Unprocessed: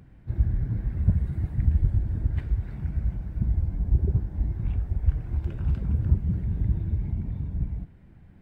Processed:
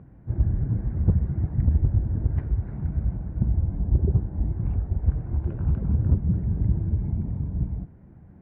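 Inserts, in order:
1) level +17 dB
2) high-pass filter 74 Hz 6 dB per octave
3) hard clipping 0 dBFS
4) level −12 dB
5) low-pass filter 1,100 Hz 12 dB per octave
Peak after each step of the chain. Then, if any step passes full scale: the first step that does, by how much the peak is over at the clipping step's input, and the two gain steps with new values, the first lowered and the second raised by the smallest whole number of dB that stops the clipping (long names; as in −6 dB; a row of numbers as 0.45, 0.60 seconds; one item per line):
+8.5, +5.0, 0.0, −12.0, −12.0 dBFS
step 1, 5.0 dB
step 1 +12 dB, step 4 −7 dB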